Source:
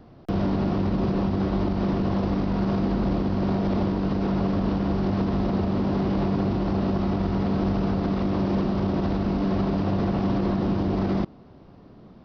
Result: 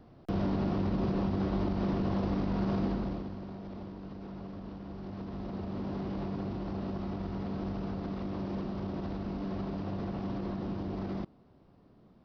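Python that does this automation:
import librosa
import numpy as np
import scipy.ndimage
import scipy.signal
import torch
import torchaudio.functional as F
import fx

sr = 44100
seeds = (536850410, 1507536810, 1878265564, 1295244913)

y = fx.gain(x, sr, db=fx.line((2.86, -6.5), (3.48, -19.0), (4.86, -19.0), (5.84, -12.0)))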